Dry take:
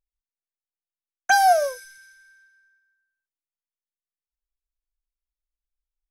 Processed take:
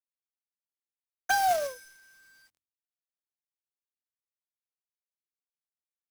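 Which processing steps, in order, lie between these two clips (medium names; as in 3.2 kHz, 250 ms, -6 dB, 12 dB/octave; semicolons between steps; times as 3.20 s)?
companded quantiser 4-bit; de-hum 45.07 Hz, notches 7; trim -8.5 dB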